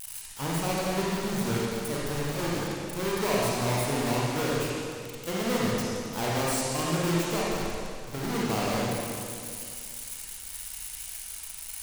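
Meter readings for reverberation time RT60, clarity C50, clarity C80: 2.3 s, -4.5 dB, -2.0 dB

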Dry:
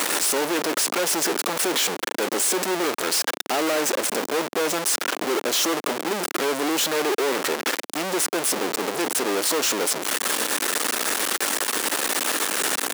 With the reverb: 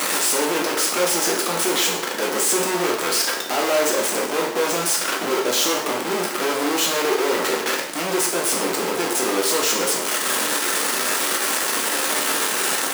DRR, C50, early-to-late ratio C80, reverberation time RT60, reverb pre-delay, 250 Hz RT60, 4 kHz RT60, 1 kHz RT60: -1.5 dB, 5.0 dB, 8.0 dB, 0.70 s, 5 ms, 0.75 s, 0.65 s, 0.70 s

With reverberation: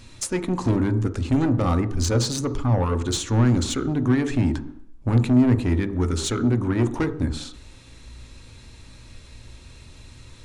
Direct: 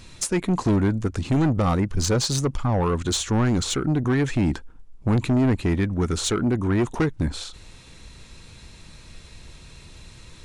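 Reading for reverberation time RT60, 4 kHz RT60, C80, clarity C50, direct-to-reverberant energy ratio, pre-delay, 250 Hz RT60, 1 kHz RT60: 0.70 s, 0.70 s, 16.5 dB, 13.5 dB, 9.5 dB, 3 ms, 0.75 s, 0.70 s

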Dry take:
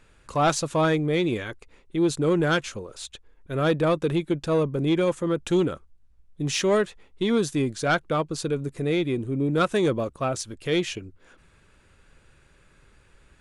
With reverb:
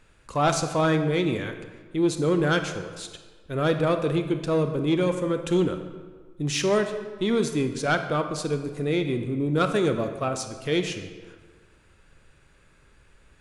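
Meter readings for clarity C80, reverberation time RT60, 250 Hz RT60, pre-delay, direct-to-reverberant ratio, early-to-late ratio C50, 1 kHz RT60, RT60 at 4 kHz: 10.0 dB, 1.5 s, 1.5 s, 25 ms, 7.0 dB, 8.5 dB, 1.5 s, 1.0 s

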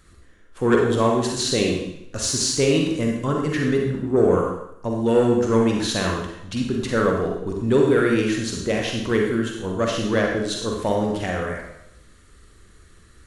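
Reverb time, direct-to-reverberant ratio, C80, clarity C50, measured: 0.80 s, -0.5 dB, 5.0 dB, 1.5 dB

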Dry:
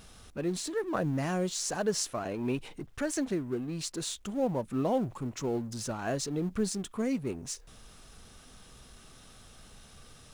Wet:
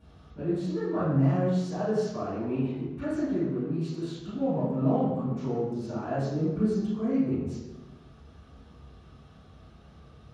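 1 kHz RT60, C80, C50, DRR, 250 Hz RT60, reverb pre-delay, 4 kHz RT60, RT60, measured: 1.0 s, 2.0 dB, -1.5 dB, -14.5 dB, 1.5 s, 3 ms, 0.85 s, 1.1 s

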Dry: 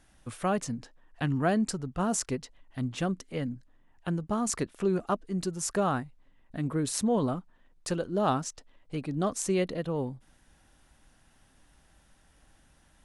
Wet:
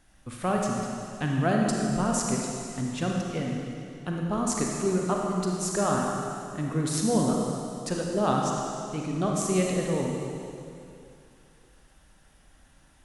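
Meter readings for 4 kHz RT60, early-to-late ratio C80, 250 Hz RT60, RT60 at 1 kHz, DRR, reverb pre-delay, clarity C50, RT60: 2.6 s, 1.0 dB, 2.6 s, 2.6 s, -1.0 dB, 32 ms, -0.5 dB, 2.6 s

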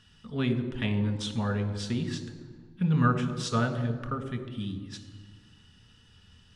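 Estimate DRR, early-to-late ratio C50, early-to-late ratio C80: 5.0 dB, 10.0 dB, 11.0 dB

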